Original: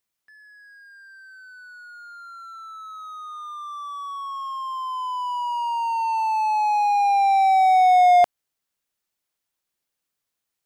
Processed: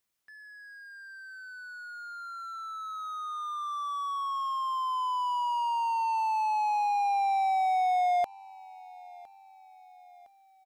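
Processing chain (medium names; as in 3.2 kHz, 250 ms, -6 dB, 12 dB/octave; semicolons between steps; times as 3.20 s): compression 3:1, threshold -28 dBFS, peak gain reduction 12 dB; on a send: feedback delay 1010 ms, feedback 50%, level -22.5 dB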